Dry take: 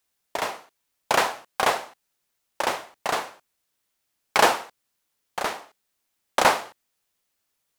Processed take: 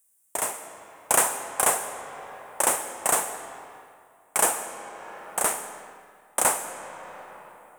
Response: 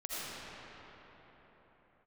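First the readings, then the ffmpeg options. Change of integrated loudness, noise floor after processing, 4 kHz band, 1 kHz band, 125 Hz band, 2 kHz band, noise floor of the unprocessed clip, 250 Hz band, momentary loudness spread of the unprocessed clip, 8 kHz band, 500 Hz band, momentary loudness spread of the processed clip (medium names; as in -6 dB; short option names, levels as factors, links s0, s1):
0.0 dB, -60 dBFS, -8.5 dB, -4.0 dB, -3.5 dB, -5.0 dB, -77 dBFS, -3.5 dB, 17 LU, +11.5 dB, -3.5 dB, 19 LU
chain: -filter_complex "[0:a]highshelf=f=6300:t=q:w=3:g=13,asplit=2[s0][s1];[1:a]atrim=start_sample=2205,asetrate=57330,aresample=44100,adelay=56[s2];[s1][s2]afir=irnorm=-1:irlink=0,volume=0.282[s3];[s0][s3]amix=inputs=2:normalize=0,dynaudnorm=f=170:g=7:m=1.68,volume=0.668"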